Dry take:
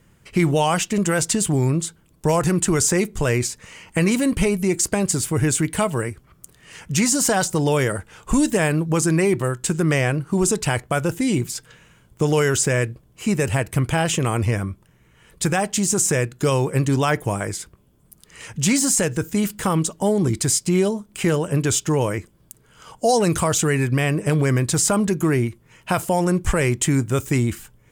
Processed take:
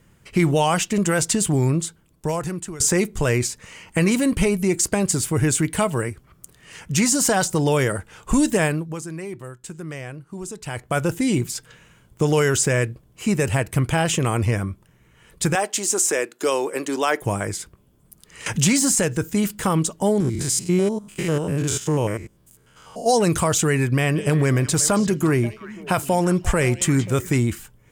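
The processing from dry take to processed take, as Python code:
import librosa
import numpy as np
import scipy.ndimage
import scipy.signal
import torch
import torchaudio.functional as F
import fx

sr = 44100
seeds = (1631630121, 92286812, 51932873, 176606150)

y = fx.highpass(x, sr, hz=300.0, slope=24, at=(15.55, 17.22))
y = fx.band_squash(y, sr, depth_pct=70, at=(18.46, 18.97))
y = fx.spec_steps(y, sr, hold_ms=100, at=(20.2, 23.08))
y = fx.echo_stepped(y, sr, ms=178, hz=3700.0, octaves=-1.4, feedback_pct=70, wet_db=-8.5, at=(24.06, 27.36), fade=0.02)
y = fx.edit(y, sr, fx.fade_out_to(start_s=1.75, length_s=1.05, floor_db=-18.0),
    fx.fade_down_up(start_s=8.64, length_s=2.33, db=-14.0, fade_s=0.46, curve='qua'), tone=tone)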